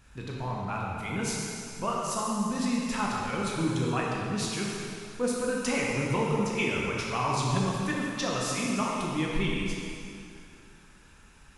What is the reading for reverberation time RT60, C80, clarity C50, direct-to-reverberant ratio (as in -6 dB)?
2.5 s, -0.5 dB, -1.5 dB, -3.5 dB